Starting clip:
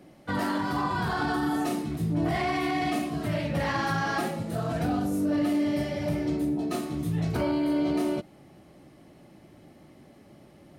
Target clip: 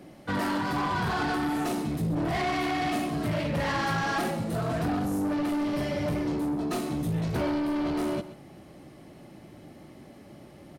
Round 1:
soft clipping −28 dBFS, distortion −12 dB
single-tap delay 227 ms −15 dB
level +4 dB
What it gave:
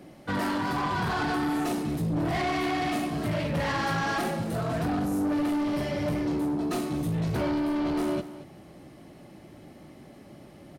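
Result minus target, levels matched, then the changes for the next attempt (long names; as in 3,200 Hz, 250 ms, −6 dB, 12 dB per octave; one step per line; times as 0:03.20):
echo 96 ms late
change: single-tap delay 131 ms −15 dB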